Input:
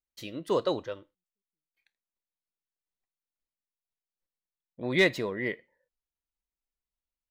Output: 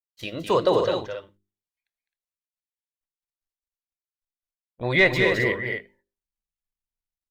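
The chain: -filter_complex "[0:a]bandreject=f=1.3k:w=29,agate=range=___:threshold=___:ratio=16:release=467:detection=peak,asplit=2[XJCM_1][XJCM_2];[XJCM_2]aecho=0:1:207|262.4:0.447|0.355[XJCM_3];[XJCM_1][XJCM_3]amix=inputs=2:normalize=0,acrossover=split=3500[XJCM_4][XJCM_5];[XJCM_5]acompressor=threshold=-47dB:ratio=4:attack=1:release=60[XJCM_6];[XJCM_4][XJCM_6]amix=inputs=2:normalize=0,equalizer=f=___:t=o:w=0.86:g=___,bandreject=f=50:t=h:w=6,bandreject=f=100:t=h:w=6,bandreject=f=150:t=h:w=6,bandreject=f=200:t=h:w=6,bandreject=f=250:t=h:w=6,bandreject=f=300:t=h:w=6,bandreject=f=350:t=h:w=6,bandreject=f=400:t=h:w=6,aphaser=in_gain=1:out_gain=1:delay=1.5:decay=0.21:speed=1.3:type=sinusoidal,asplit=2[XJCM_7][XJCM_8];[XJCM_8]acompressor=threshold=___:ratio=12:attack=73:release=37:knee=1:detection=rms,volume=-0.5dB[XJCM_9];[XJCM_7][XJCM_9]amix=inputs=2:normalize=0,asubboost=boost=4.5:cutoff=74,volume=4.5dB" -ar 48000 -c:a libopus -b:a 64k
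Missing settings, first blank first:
-23dB, -44dB, 270, -5.5, -34dB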